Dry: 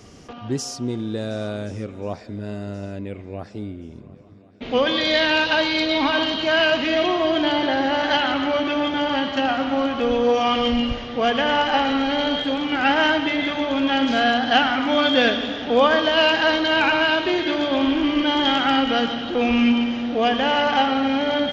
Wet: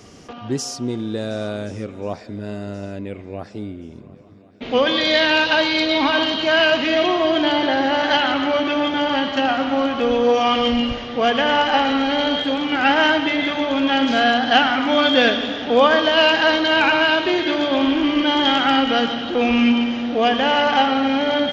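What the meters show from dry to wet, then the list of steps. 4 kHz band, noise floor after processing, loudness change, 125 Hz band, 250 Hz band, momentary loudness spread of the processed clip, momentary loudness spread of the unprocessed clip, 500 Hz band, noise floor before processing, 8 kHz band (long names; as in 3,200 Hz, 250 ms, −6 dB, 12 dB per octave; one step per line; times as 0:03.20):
+2.5 dB, −40 dBFS, +2.5 dB, 0.0 dB, +1.5 dB, 15 LU, 14 LU, +2.5 dB, −41 dBFS, can't be measured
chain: low-shelf EQ 100 Hz −6.5 dB
level +2.5 dB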